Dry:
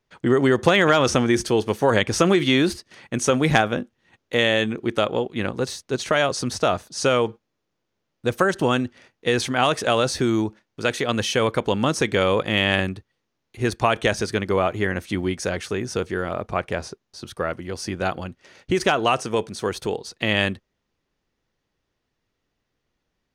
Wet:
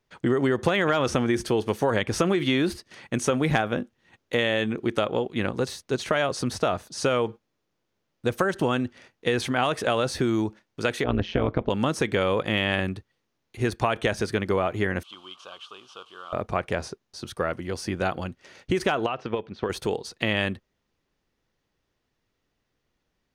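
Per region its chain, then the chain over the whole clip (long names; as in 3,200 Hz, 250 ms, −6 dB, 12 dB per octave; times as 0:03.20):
0:11.04–0:11.70: Gaussian smoothing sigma 2.3 samples + low-shelf EQ 340 Hz +11 dB + amplitude modulation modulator 180 Hz, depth 80%
0:15.03–0:16.33: linear delta modulator 64 kbit/s, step −36.5 dBFS + pair of resonant band-passes 1,900 Hz, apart 1.4 octaves
0:19.06–0:19.70: low-pass filter 3,600 Hz 24 dB per octave + transient designer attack +10 dB, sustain −6 dB + downward compressor 3 to 1, threshold −25 dBFS
whole clip: dynamic equaliser 6,400 Hz, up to −6 dB, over −39 dBFS, Q 0.87; downward compressor 2.5 to 1, threshold −21 dBFS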